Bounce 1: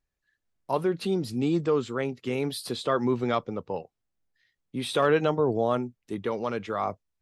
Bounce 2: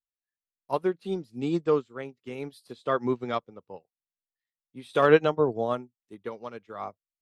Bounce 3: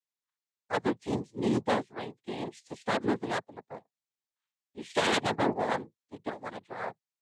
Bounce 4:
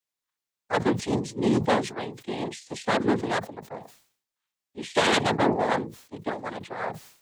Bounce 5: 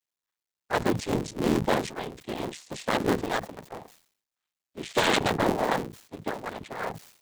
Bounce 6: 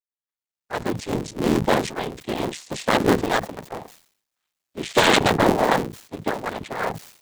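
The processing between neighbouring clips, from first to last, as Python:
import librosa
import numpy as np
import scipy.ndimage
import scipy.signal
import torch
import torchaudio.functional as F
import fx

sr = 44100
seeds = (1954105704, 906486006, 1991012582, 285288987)

y1 = fx.low_shelf(x, sr, hz=140.0, db=-3.0)
y1 = fx.upward_expand(y1, sr, threshold_db=-39.0, expansion=2.5)
y1 = y1 * 10.0 ** (6.5 / 20.0)
y2 = 10.0 ** (-20.0 / 20.0) * (np.abs((y1 / 10.0 ** (-20.0 / 20.0) + 3.0) % 4.0 - 2.0) - 1.0)
y2 = fx.noise_vocoder(y2, sr, seeds[0], bands=6)
y3 = fx.sustainer(y2, sr, db_per_s=110.0)
y3 = y3 * 10.0 ** (5.0 / 20.0)
y4 = fx.cycle_switch(y3, sr, every=3, mode='muted')
y5 = fx.fade_in_head(y4, sr, length_s=2.08)
y5 = y5 * 10.0 ** (7.0 / 20.0)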